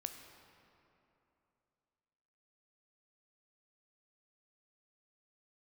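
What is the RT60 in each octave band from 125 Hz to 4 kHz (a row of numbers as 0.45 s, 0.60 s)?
3.0 s, 3.0 s, 3.0 s, 2.9 s, 2.4 s, 1.7 s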